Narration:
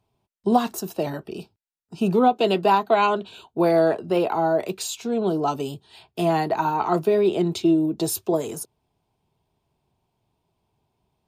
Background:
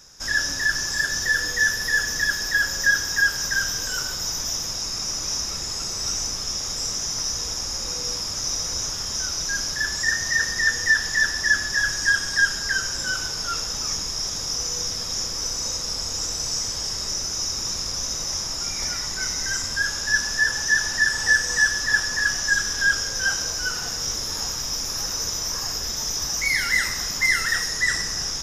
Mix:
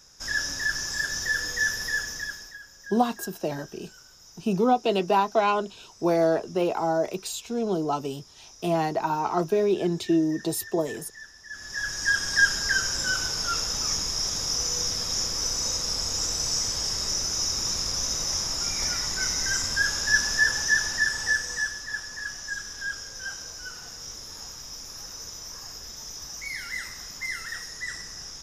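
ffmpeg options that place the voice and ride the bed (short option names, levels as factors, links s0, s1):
-filter_complex "[0:a]adelay=2450,volume=0.668[s0];[1:a]volume=8.41,afade=t=out:st=1.82:d=0.76:silence=0.112202,afade=t=in:st=11.49:d=0.94:silence=0.0668344,afade=t=out:st=20.35:d=1.49:silence=0.251189[s1];[s0][s1]amix=inputs=2:normalize=0"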